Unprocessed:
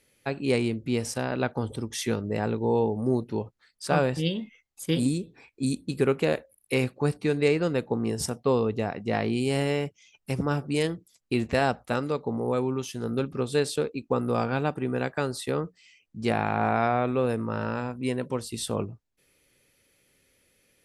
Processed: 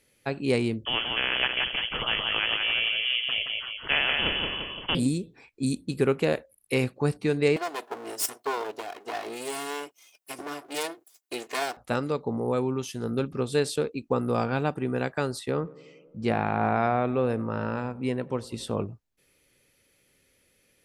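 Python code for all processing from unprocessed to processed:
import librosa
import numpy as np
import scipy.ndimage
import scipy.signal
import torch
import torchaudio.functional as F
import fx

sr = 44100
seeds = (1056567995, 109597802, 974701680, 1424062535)

y = fx.chain(x, sr, fx.echo_feedback(ms=173, feedback_pct=33, wet_db=-6),
    fx.freq_invert(carrier_hz=3200),
    fx.spectral_comp(ratio=2.0), at=(0.85, 4.95))
y = fx.chain(y, sr, fx.lower_of_two(delay_ms=2.8),
    fx.highpass(hz=440.0, slope=12),
    fx.high_shelf(hz=8500.0, db=11.5), at=(7.56, 11.77))
y = fx.chain(y, sr, fx.lowpass(hz=3200.0, slope=6),
    fx.echo_tape(ms=91, feedback_pct=89, wet_db=-19.5, lp_hz=1200.0, drive_db=16.0, wow_cents=32), at=(15.39, 18.87))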